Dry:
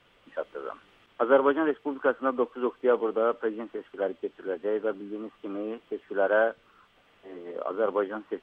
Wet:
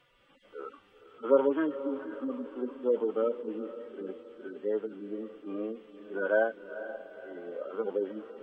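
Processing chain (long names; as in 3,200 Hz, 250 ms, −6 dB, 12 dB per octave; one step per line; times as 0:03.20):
harmonic-percussive split with one part muted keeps harmonic
feedback delay with all-pass diffusion 484 ms, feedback 45%, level −12.5 dB
level −1.5 dB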